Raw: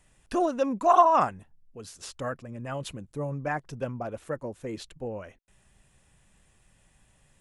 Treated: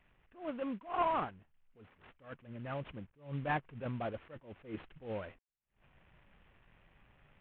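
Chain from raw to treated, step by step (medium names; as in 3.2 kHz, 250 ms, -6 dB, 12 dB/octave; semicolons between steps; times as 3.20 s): CVSD coder 16 kbps; gain riding within 5 dB 2 s; attacks held to a fixed rise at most 170 dB/s; trim -7 dB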